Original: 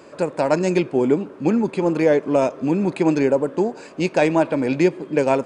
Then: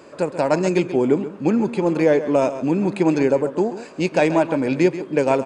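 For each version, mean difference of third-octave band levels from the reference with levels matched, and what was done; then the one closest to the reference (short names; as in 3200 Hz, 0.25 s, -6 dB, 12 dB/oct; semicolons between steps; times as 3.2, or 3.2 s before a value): 1.5 dB: echo 0.134 s -12.5 dB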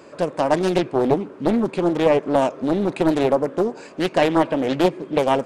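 3.0 dB: Doppler distortion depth 0.64 ms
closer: first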